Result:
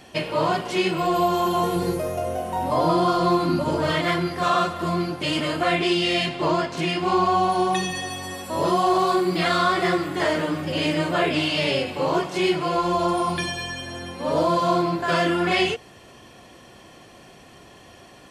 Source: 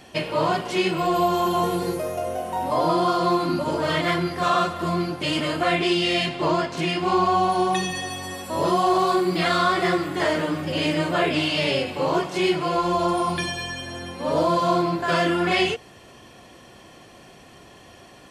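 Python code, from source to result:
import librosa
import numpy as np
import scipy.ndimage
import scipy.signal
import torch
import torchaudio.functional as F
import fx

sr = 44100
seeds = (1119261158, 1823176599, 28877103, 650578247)

y = fx.low_shelf(x, sr, hz=170.0, db=7.5, at=(1.76, 3.91))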